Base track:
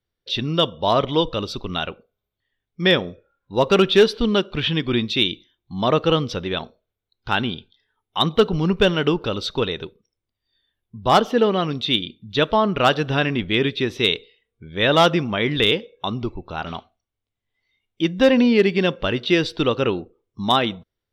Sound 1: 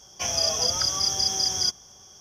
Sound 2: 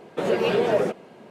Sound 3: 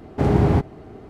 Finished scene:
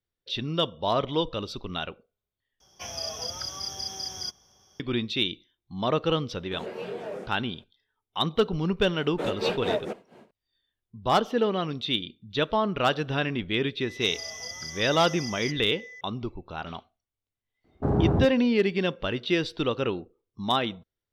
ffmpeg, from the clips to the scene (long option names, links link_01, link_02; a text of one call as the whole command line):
ffmpeg -i bed.wav -i cue0.wav -i cue1.wav -i cue2.wav -filter_complex "[1:a]asplit=2[link_01][link_02];[2:a]asplit=2[link_03][link_04];[0:a]volume=-7dB[link_05];[link_01]equalizer=frequency=7200:width_type=o:width=0.56:gain=-10[link_06];[link_03]flanger=delay=22.5:depth=5:speed=1.8[link_07];[link_04]tremolo=f=4.3:d=0.85[link_08];[link_02]aeval=exprs='val(0)+0.0398*sin(2*PI*2000*n/s)':channel_layout=same[link_09];[3:a]afwtdn=0.0631[link_10];[link_05]asplit=2[link_11][link_12];[link_11]atrim=end=2.604[link_13];[link_06]atrim=end=2.2,asetpts=PTS-STARTPTS,volume=-7.5dB[link_14];[link_12]atrim=start=4.796[link_15];[link_07]atrim=end=1.3,asetpts=PTS-STARTPTS,volume=-11.5dB,afade=type=in:duration=0.004:curve=hsin,afade=type=out:start_time=1.296:duration=0.004:curve=hsin,adelay=279594S[link_16];[link_08]atrim=end=1.3,asetpts=PTS-STARTPTS,volume=-3dB,afade=type=in:duration=0.004:curve=hsin,afade=type=out:start_time=1.296:duration=0.004:curve=hsin,adelay=9010[link_17];[link_09]atrim=end=2.2,asetpts=PTS-STARTPTS,volume=-14.5dB,afade=type=in:duration=0.004:curve=hsin,afade=type=out:start_time=2.196:duration=0.004:curve=hsin,adelay=13810[link_18];[link_10]atrim=end=1.09,asetpts=PTS-STARTPTS,volume=-6dB,afade=type=in:duration=0.004:curve=hsin,afade=type=out:start_time=1.086:duration=0.004:curve=hsin,adelay=777924S[link_19];[link_13][link_14]acrossfade=duration=0.004:curve1=hsin:curve2=hsin[link_20];[link_20][link_15]acrossfade=duration=0.004:curve1=hsin:curve2=hsin[link_21];[link_21][link_16][link_17][link_18][link_19]amix=inputs=5:normalize=0" out.wav